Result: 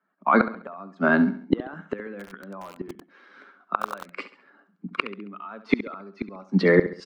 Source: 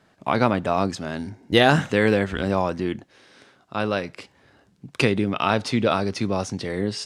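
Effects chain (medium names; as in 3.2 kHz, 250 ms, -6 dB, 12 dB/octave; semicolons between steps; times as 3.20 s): expander on every frequency bin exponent 1.5; steep high-pass 170 Hz 72 dB/octave; de-esser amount 85%; low-pass 2.1 kHz 12 dB/octave; peaking EQ 1.3 kHz +11 dB 0.59 oct; peak limiter -16 dBFS, peak gain reduction 11 dB; level rider gain up to 14 dB; inverted gate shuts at -11 dBFS, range -32 dB; feedback delay 68 ms, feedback 39%, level -13 dB; 2.10–4.10 s: bit-crushed delay 92 ms, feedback 55%, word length 7-bit, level -4 dB; trim +6 dB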